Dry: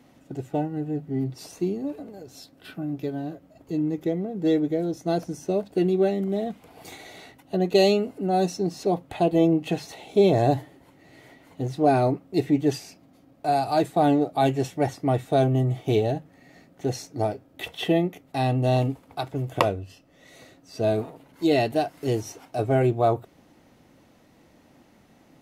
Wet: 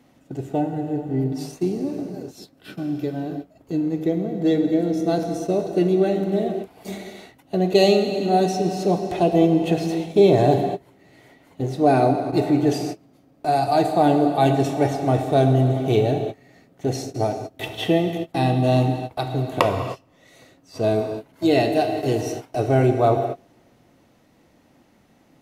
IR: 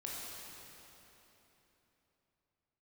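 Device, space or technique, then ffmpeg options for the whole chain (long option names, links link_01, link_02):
keyed gated reverb: -filter_complex "[0:a]asplit=3[link_01][link_02][link_03];[1:a]atrim=start_sample=2205[link_04];[link_02][link_04]afir=irnorm=-1:irlink=0[link_05];[link_03]apad=whole_len=1121011[link_06];[link_05][link_06]sidechaingate=range=-31dB:threshold=-43dB:ratio=16:detection=peak,volume=-0.5dB[link_07];[link_01][link_07]amix=inputs=2:normalize=0,volume=-1dB"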